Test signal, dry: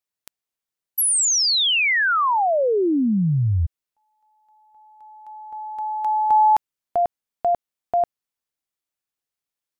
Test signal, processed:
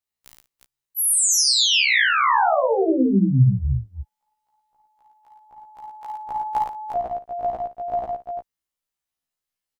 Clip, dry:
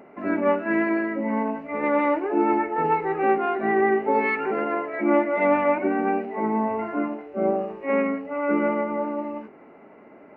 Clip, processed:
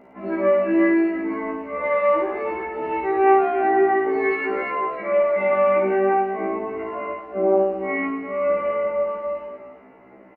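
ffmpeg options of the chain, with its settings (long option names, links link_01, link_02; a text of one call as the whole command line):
ffmpeg -i in.wav -af "lowshelf=frequency=63:gain=9,aecho=1:1:54|55|109|166|352:0.531|0.531|0.562|0.119|0.422,afftfilt=real='re*1.73*eq(mod(b,3),0)':imag='im*1.73*eq(mod(b,3),0)':win_size=2048:overlap=0.75" out.wav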